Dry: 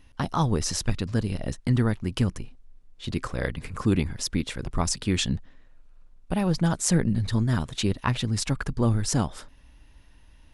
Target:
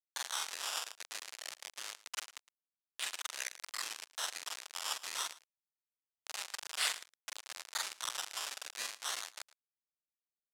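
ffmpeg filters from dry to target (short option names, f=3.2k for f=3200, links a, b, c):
-af "afftfilt=real='re':imag='-im':win_size=4096:overlap=0.75,highshelf=f=4k:g=8.5,afftfilt=real='re*gte(hypot(re,im),0.00398)':imag='im*gte(hypot(re,im),0.00398)':win_size=1024:overlap=0.75,acompressor=threshold=-34dB:ratio=4,acrusher=samples=14:mix=1:aa=0.000001:lfo=1:lforange=14:lforate=0.26,aderivative,acrusher=bits=5:mix=0:aa=0.000001,highpass=670,lowpass=7.2k,aecho=1:1:111:0.106,volume=12.5dB"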